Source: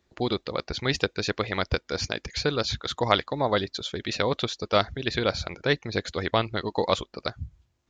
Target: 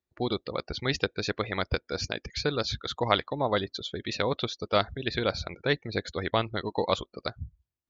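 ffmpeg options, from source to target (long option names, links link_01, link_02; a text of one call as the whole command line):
ffmpeg -i in.wav -af "afftdn=noise_reduction=18:noise_floor=-40,volume=-2.5dB" out.wav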